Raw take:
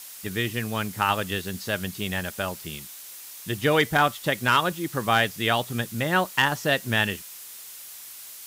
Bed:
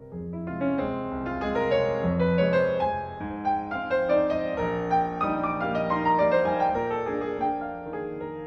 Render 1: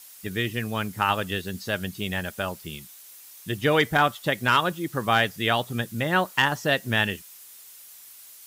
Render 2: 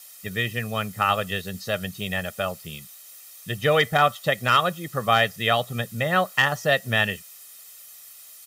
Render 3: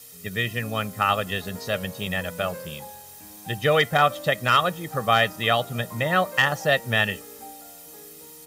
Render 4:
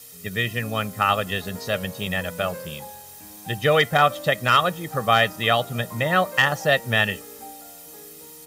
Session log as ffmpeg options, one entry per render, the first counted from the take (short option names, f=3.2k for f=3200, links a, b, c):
-af "afftdn=nr=7:nf=-42"
-af "highpass=100,aecho=1:1:1.6:0.64"
-filter_complex "[1:a]volume=-16.5dB[a];[0:a][a]amix=inputs=2:normalize=0"
-af "volume=1.5dB"